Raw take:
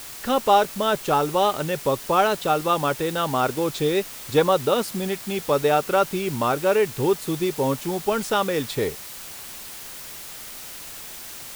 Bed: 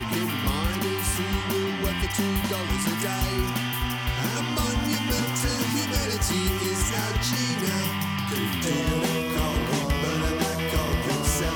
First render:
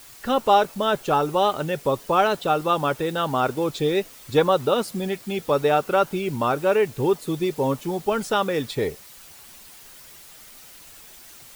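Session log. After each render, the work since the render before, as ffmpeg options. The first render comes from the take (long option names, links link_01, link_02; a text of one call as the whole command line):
ffmpeg -i in.wav -af "afftdn=noise_reduction=9:noise_floor=-38" out.wav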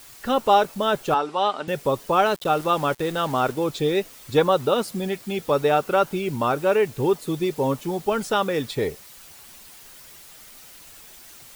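ffmpeg -i in.wav -filter_complex "[0:a]asettb=1/sr,asplit=3[link_01][link_02][link_03];[link_01]atrim=end=1.144[link_04];[link_02]atrim=start=1.14:end=1.68,asetpts=PTS-STARTPTS,afade=type=in:duration=0.004:curve=qsin,afade=type=out:start_time=0.536:duration=0.004:curve=qsin,highpass=frequency=230:width=0.5412,highpass=frequency=230:width=1.3066,equalizer=frequency=340:width_type=q:width=4:gain=-9,equalizer=frequency=520:width_type=q:width=4:gain=-7,equalizer=frequency=6500:width_type=q:width=4:gain=-9,lowpass=frequency=7300:width=0.5412,lowpass=frequency=7300:width=1.3066[link_05];[link_03]atrim=start=1.676[link_06];[link_04][link_05]acrossfade=duration=0.004:curve1=hsin:curve2=qsin[link_07];[link_07][link_06]acrossfade=duration=0.004:curve1=qsin:curve2=hsin,asettb=1/sr,asplit=3[link_08][link_09][link_10];[link_08]atrim=end=2.264[link_11];[link_09]atrim=start=2.26:end=3.52,asetpts=PTS-STARTPTS,afade=type=in:duration=0.004:curve=qsin,afade=type=out:start_time=1.256:duration=0.004:curve=qsin,aeval=exprs='val(0)*gte(abs(val(0)),0.0178)':channel_layout=same[link_12];[link_10]atrim=start=3.516[link_13];[link_11][link_12]acrossfade=duration=0.004:curve1=hsin:curve2=qsin[link_14];[link_14][link_13]acrossfade=duration=0.004:curve1=qsin:curve2=hsin" out.wav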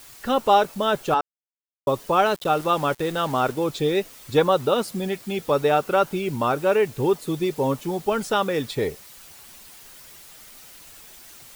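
ffmpeg -i in.wav -filter_complex "[0:a]asplit=3[link_01][link_02][link_03];[link_01]atrim=end=1.21,asetpts=PTS-STARTPTS,afade=type=out:start_time=1.206:duration=0.004:curve=hsin[link_04];[link_02]atrim=start=1.21:end=1.87,asetpts=PTS-STARTPTS,volume=0[link_05];[link_03]atrim=start=1.87,asetpts=PTS-STARTPTS,afade=type=in:duration=0.004:curve=hsin[link_06];[link_04][link_05][link_06]concat=n=3:v=0:a=1" out.wav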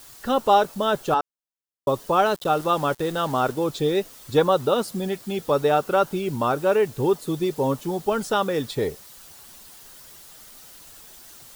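ffmpeg -i in.wav -af "equalizer=frequency=2300:width_type=o:width=0.59:gain=-5.5" out.wav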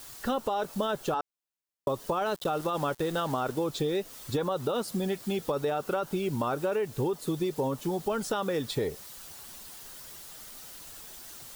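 ffmpeg -i in.wav -af "alimiter=limit=-14.5dB:level=0:latency=1:release=14,acompressor=threshold=-26dB:ratio=6" out.wav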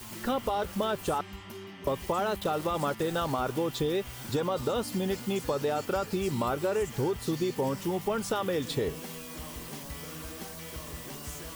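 ffmpeg -i in.wav -i bed.wav -filter_complex "[1:a]volume=-17.5dB[link_01];[0:a][link_01]amix=inputs=2:normalize=0" out.wav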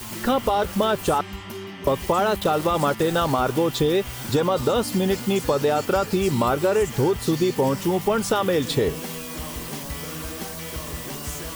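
ffmpeg -i in.wav -af "volume=8.5dB" out.wav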